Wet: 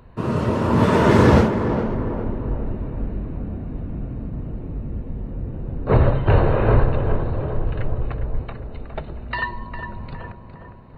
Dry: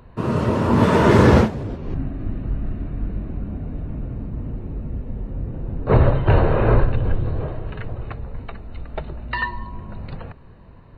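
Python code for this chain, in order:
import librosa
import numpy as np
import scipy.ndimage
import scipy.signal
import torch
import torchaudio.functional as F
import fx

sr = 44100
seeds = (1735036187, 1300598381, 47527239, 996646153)

p1 = fx.low_shelf(x, sr, hz=87.0, db=10.5, at=(7.53, 8.43))
p2 = p1 + fx.echo_tape(p1, sr, ms=408, feedback_pct=64, wet_db=-5, lp_hz=1300.0, drive_db=7.0, wow_cents=28, dry=0)
y = F.gain(torch.from_numpy(p2), -1.0).numpy()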